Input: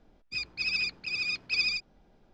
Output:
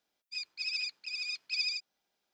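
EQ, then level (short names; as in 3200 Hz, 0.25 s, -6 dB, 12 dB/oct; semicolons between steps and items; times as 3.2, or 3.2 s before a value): differentiator; +1.0 dB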